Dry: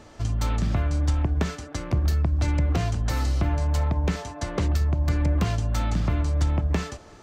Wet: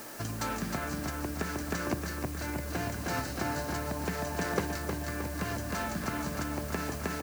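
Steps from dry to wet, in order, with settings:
parametric band 1,600 Hz +9.5 dB 0.21 octaves
on a send: repeating echo 312 ms, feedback 58%, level −3.5 dB
on the sum: downward compressor, threshold −24 dBFS, peak gain reduction 10.5 dB
high-pass filter 190 Hz 12 dB per octave
in parallel at −11 dB: bit-depth reduction 6 bits, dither triangular
on the sum: parametric band 3,400 Hz −6 dB 0.37 octaves

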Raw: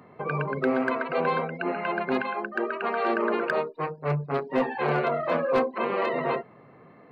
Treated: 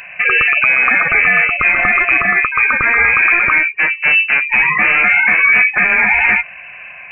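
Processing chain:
notch filter 1,500 Hz, Q 28
voice inversion scrambler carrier 2,800 Hz
boost into a limiter +20.5 dB
level −2 dB

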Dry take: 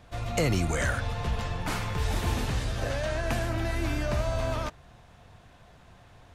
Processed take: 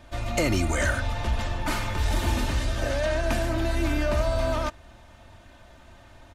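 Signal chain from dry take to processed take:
comb filter 3.3 ms, depth 62%
in parallel at −9 dB: soft clipping −25.5 dBFS, distortion −12 dB

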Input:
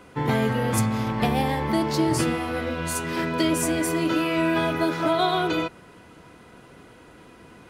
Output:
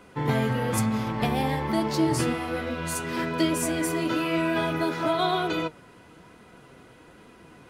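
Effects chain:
flanger 1.1 Hz, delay 4.2 ms, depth 4.2 ms, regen +70%
level +2 dB

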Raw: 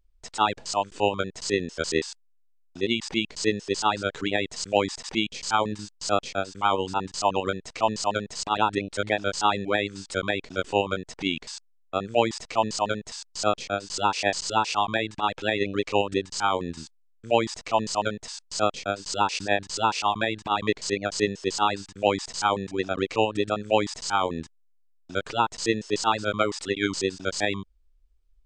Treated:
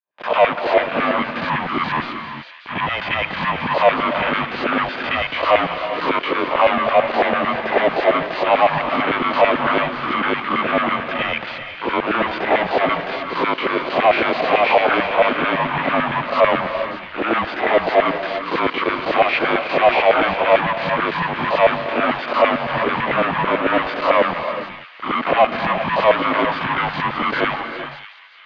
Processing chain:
peak hold with a rise ahead of every peak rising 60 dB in 0.38 s
high-pass filter 67 Hz 24 dB per octave
parametric band 480 Hz +12.5 dB 0.84 octaves
leveller curve on the samples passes 5
downward compressor, threshold −5 dBFS, peak gain reduction 4 dB
leveller curve on the samples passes 3
auto-filter high-pass saw down 9 Hz 720–2,000 Hz
single-sideband voice off tune −250 Hz 200–3,400 Hz
on a send: delay with a high-pass on its return 589 ms, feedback 46%, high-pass 2,500 Hz, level −10.5 dB
on the sum: reverb whose tail is shaped and stops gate 430 ms rising, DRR 8 dB
level −12 dB

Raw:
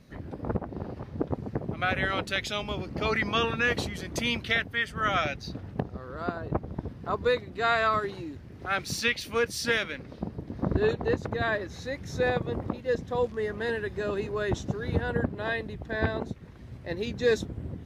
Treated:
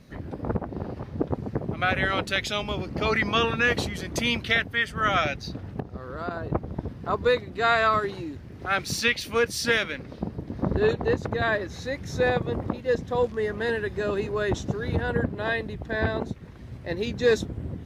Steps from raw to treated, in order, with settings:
0:05.40–0:06.31: downward compressor 2.5 to 1, threshold −33 dBFS, peak gain reduction 7.5 dB
saturating transformer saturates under 210 Hz
level +3.5 dB

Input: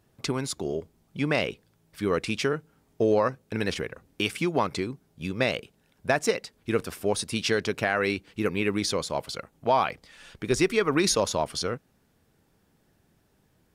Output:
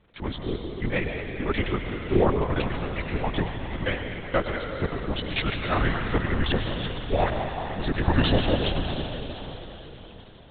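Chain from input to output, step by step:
gliding playback speed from 88% → 69%
volume swells 111 ms
in parallel at −5.5 dB: bit-depth reduction 8 bits, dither triangular
on the sum: time stretch by overlap-add 0.6×, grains 97 ms
slack as between gear wheels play −43 dBFS
feedback delay with all-pass diffusion 662 ms, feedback 41%, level −14.5 dB
on a send at −2 dB: convolution reverb RT60 3.3 s, pre-delay 90 ms
on the sum: linear-prediction vocoder at 8 kHz whisper

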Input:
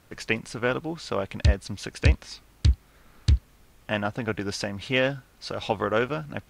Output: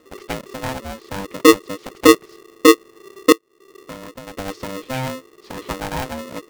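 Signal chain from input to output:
RIAA equalisation playback
0:03.32–0:04.37: downward compressor 16 to 1, threshold −26 dBFS, peak gain reduction 26 dB
ring modulator with a square carrier 390 Hz
level −5.5 dB

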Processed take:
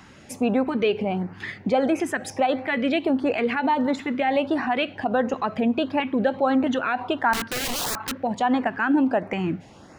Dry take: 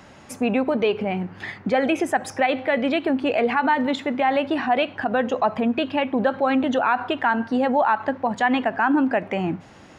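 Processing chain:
0:07.33–0:08.13: wrap-around overflow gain 21 dB
auto-filter notch saw up 1.5 Hz 490–3,700 Hz

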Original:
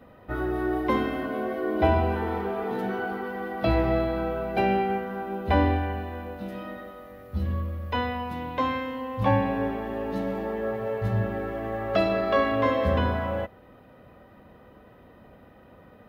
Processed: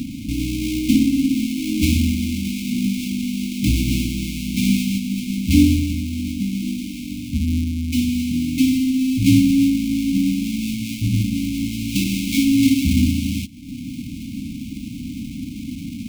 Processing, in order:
each half-wave held at its own peak
upward compression, threshold −22 dBFS
linear-phase brick-wall band-stop 300–2,100 Hz
parametric band 300 Hz +13 dB 1.1 octaves

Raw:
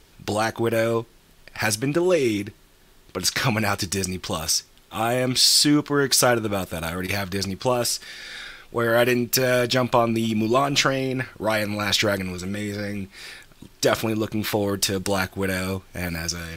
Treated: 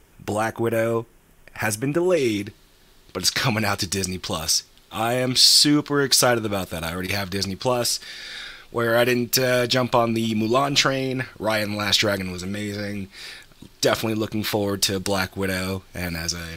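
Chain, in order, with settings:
parametric band 4,200 Hz −12.5 dB 0.67 octaves, from 0:02.17 +4 dB

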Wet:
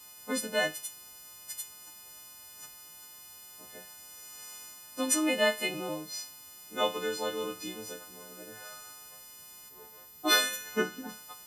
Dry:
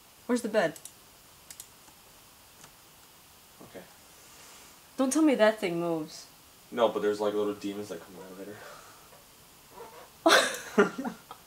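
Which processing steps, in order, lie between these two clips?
every partial snapped to a pitch grid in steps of 3 semitones
dynamic equaliser 2,800 Hz, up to +6 dB, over −43 dBFS, Q 0.9
gain on a spectral selection 0:09.69–0:11.09, 480–11,000 Hz −6 dB
level −5.5 dB

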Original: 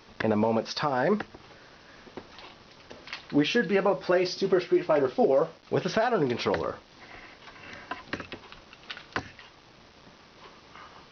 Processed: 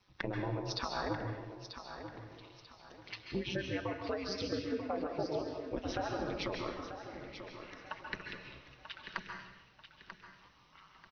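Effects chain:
spectral dynamics exaggerated over time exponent 1.5
downward compressor, threshold −35 dBFS, peak gain reduction 15 dB
ring modulation 97 Hz
repeating echo 939 ms, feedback 32%, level −10 dB
dense smooth reverb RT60 0.87 s, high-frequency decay 0.95×, pre-delay 120 ms, DRR 3 dB
level +2.5 dB

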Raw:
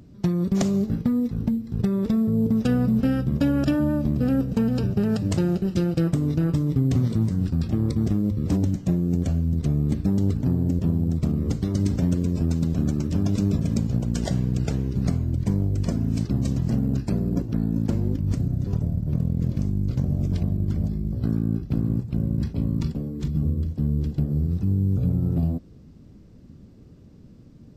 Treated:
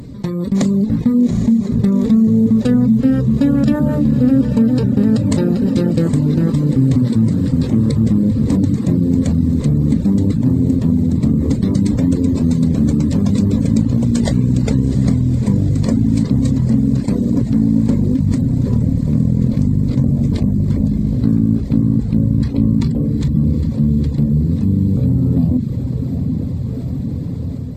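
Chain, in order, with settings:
mains-hum notches 60/120/180/240/300 Hz
feedback delay with all-pass diffusion 808 ms, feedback 69%, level −10.5 dB
convolution reverb RT60 2.3 s, pre-delay 22 ms, DRR 18.5 dB
reverb reduction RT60 0.53 s
EQ curve with evenly spaced ripples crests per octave 1, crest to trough 7 dB
automatic gain control gain up to 9.5 dB
dynamic equaliser 220 Hz, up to +7 dB, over −27 dBFS, Q 1.3
envelope flattener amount 50%
level −7 dB

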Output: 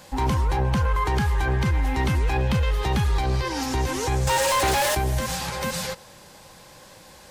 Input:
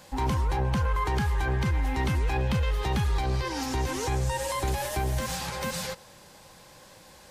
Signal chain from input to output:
0:04.27–0:04.95: mid-hump overdrive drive 26 dB, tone 6,400 Hz, clips at −19 dBFS
level +4 dB

